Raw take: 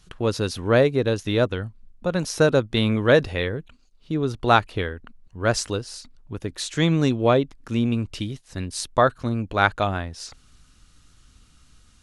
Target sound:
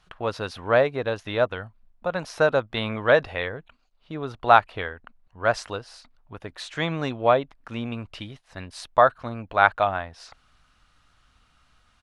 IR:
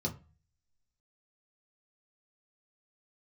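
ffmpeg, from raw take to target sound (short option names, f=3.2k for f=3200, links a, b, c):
-af "firequalizer=gain_entry='entry(360,0);entry(660,13);entry(6700,-4)':delay=0.05:min_phase=1,volume=-9.5dB"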